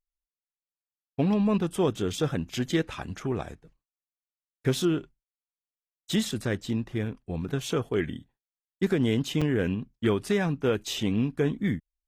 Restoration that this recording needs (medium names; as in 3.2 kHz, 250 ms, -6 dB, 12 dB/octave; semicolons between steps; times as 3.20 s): interpolate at 9.41 s, 5.5 ms